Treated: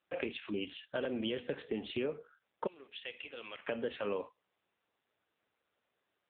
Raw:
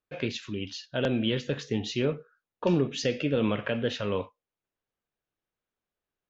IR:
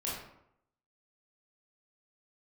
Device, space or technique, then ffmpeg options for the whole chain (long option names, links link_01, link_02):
voicemail: -filter_complex "[0:a]asettb=1/sr,asplit=3[link_01][link_02][link_03];[link_01]atrim=end=2.674[link_04];[link_02]atrim=start=2.67:end=3.68,asetpts=PTS-STARTPTS,afade=type=in:duration=0.004:curve=qsin,afade=type=out:start_time=1.006:duration=0.004:curve=qsin,aderivative[link_05];[link_03]atrim=start=3.676[link_06];[link_04][link_05]acrossfade=duration=0.004:curve1=hsin:curve2=qsin[link_07];[link_07][link_06]acrossfade=duration=0.004:curve1=qsin:curve2=hsin,highpass=310,lowpass=2900,acompressor=threshold=-36dB:ratio=6,volume=4dB" -ar 8000 -c:a libopencore_amrnb -b:a 6700